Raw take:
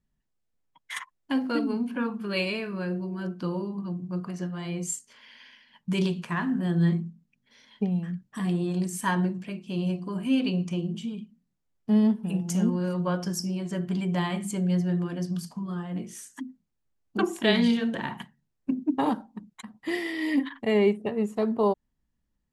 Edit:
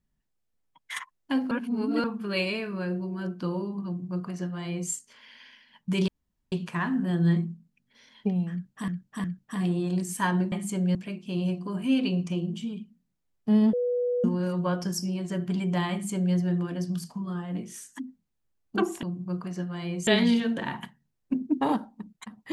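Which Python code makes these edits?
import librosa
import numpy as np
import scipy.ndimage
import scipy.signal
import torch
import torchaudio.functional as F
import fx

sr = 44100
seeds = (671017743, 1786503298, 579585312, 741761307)

y = fx.edit(x, sr, fx.reverse_span(start_s=1.51, length_s=0.53),
    fx.duplicate(start_s=3.86, length_s=1.04, to_s=17.44),
    fx.insert_room_tone(at_s=6.08, length_s=0.44),
    fx.repeat(start_s=8.08, length_s=0.36, count=3),
    fx.bleep(start_s=12.14, length_s=0.51, hz=490.0, db=-23.5),
    fx.duplicate(start_s=14.33, length_s=0.43, to_s=9.36), tone=tone)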